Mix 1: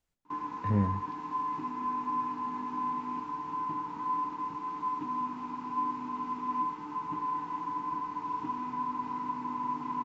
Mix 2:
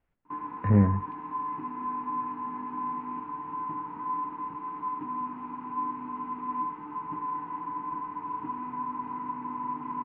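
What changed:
speech +7.0 dB; master: add low-pass 2.4 kHz 24 dB/octave

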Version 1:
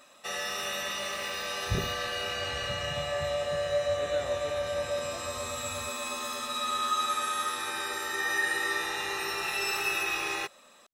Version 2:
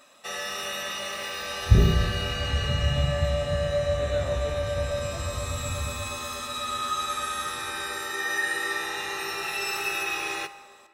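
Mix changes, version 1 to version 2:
second sound: add tilt EQ -3 dB/octave; reverb: on, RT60 1.8 s

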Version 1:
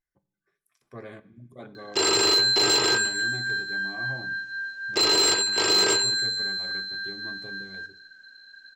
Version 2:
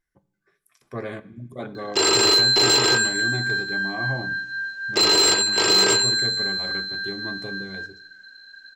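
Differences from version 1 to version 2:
speech +9.5 dB; background +3.5 dB

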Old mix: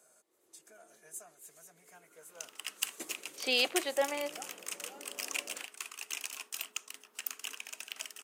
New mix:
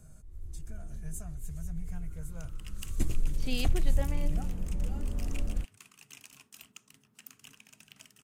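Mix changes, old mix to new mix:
speech -9.5 dB; second sound -12.0 dB; master: remove high-pass 400 Hz 24 dB/octave

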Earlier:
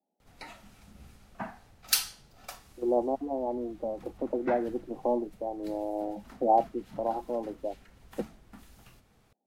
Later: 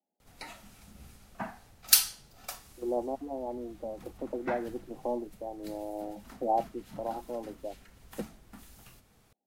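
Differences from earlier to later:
speech -5.0 dB; master: add treble shelf 6 kHz +8 dB

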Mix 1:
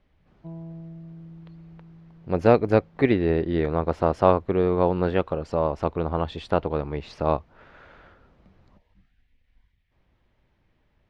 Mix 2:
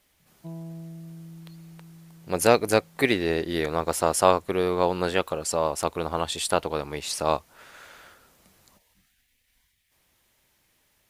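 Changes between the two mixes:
speech: add tilt EQ +2.5 dB/octave; master: remove distance through air 240 m

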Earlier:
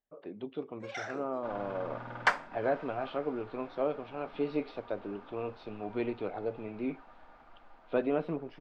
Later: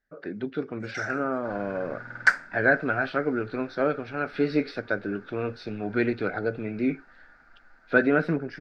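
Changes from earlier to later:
speech +11.5 dB; master: add FFT filter 190 Hz 0 dB, 1.1 kHz -10 dB, 1.5 kHz +12 dB, 3.1 kHz -9 dB, 4.6 kHz +6 dB

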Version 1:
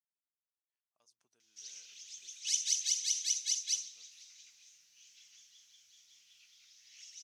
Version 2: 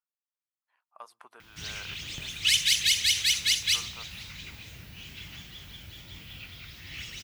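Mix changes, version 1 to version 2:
speech: add resonant high-pass 1.1 kHz, resonance Q 2; master: remove band-pass filter 6.1 kHz, Q 5.5

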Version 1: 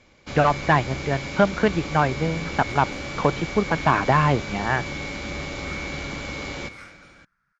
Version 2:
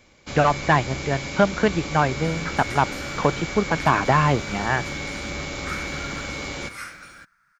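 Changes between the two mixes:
second sound +9.0 dB; master: remove distance through air 67 m

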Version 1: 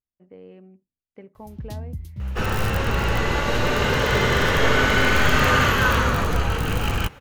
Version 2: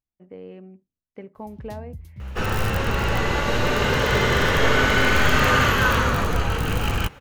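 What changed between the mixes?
speech +4.5 dB; first sound -5.5 dB

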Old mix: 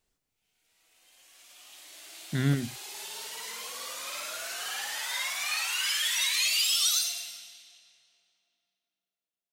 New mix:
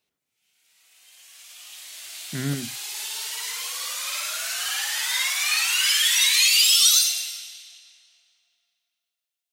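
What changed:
speech: add band-pass 130–3400 Hz; background: add tilt shelf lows -9.5 dB, about 710 Hz

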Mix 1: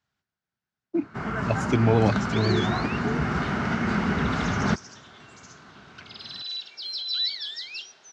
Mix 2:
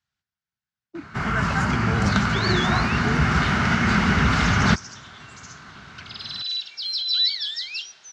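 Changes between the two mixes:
first sound +11.5 dB; second sound +6.5 dB; master: add peaking EQ 410 Hz -11 dB 2.9 oct

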